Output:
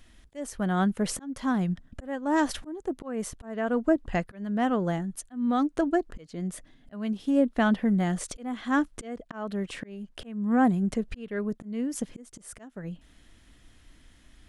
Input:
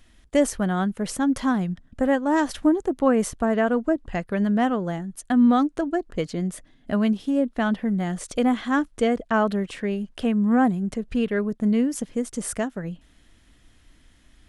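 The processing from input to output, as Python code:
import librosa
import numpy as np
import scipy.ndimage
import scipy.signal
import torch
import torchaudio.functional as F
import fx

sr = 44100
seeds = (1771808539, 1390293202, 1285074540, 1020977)

y = fx.auto_swell(x, sr, attack_ms=511.0)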